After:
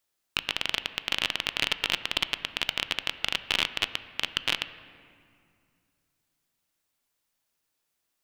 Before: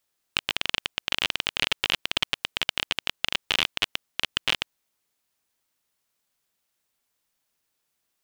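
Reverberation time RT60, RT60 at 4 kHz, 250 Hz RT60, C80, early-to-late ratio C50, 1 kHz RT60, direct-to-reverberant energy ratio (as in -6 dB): 2.3 s, 1.6 s, 3.0 s, 14.0 dB, 13.0 dB, 2.3 s, 11.5 dB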